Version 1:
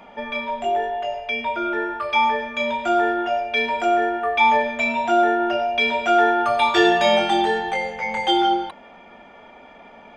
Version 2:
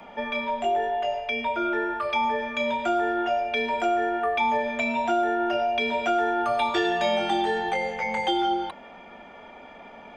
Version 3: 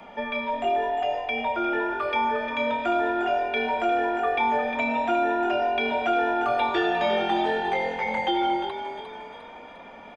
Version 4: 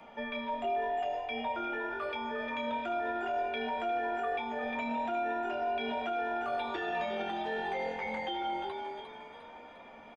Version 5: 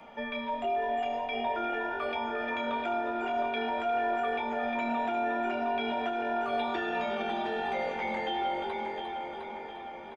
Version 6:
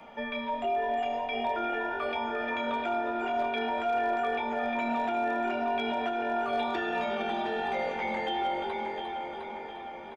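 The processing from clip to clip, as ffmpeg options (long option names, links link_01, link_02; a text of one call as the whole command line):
ffmpeg -i in.wav -filter_complex "[0:a]acrossover=split=120|660|7500[link_01][link_02][link_03][link_04];[link_01]acompressor=threshold=-51dB:ratio=4[link_05];[link_02]acompressor=threshold=-26dB:ratio=4[link_06];[link_03]acompressor=threshold=-27dB:ratio=4[link_07];[link_04]acompressor=threshold=-59dB:ratio=4[link_08];[link_05][link_06][link_07][link_08]amix=inputs=4:normalize=0" out.wav
ffmpeg -i in.wav -filter_complex "[0:a]asplit=6[link_01][link_02][link_03][link_04][link_05][link_06];[link_02]adelay=353,afreqshift=42,volume=-10dB[link_07];[link_03]adelay=706,afreqshift=84,volume=-17.1dB[link_08];[link_04]adelay=1059,afreqshift=126,volume=-24.3dB[link_09];[link_05]adelay=1412,afreqshift=168,volume=-31.4dB[link_10];[link_06]adelay=1765,afreqshift=210,volume=-38.5dB[link_11];[link_01][link_07][link_08][link_09][link_10][link_11]amix=inputs=6:normalize=0,acrossover=split=4100[link_12][link_13];[link_13]acompressor=threshold=-58dB:ratio=4:attack=1:release=60[link_14];[link_12][link_14]amix=inputs=2:normalize=0" out.wav
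ffmpeg -i in.wav -filter_complex "[0:a]alimiter=limit=-19.5dB:level=0:latency=1:release=11,asplit=2[link_01][link_02];[link_02]adelay=13,volume=-7dB[link_03];[link_01][link_03]amix=inputs=2:normalize=0,volume=-8dB" out.wav
ffmpeg -i in.wav -filter_complex "[0:a]asplit=2[link_01][link_02];[link_02]adelay=710,lowpass=frequency=3700:poles=1,volume=-6.5dB,asplit=2[link_03][link_04];[link_04]adelay=710,lowpass=frequency=3700:poles=1,volume=0.52,asplit=2[link_05][link_06];[link_06]adelay=710,lowpass=frequency=3700:poles=1,volume=0.52,asplit=2[link_07][link_08];[link_08]adelay=710,lowpass=frequency=3700:poles=1,volume=0.52,asplit=2[link_09][link_10];[link_10]adelay=710,lowpass=frequency=3700:poles=1,volume=0.52,asplit=2[link_11][link_12];[link_12]adelay=710,lowpass=frequency=3700:poles=1,volume=0.52[link_13];[link_01][link_03][link_05][link_07][link_09][link_11][link_13]amix=inputs=7:normalize=0,volume=2dB" out.wav
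ffmpeg -i in.wav -af "volume=23dB,asoftclip=hard,volume=-23dB,volume=1dB" out.wav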